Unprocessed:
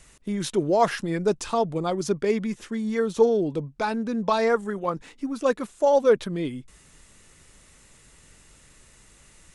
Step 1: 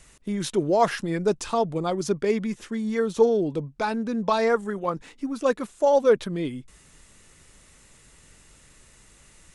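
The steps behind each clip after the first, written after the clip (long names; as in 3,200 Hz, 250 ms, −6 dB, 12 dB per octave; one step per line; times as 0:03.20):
no processing that can be heard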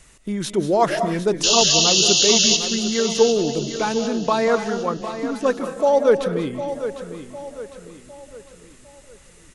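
sound drawn into the spectrogram noise, 0:01.43–0:02.57, 2,600–7,100 Hz −20 dBFS
repeating echo 755 ms, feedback 43%, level −11 dB
convolution reverb RT60 0.55 s, pre-delay 145 ms, DRR 9 dB
level +2.5 dB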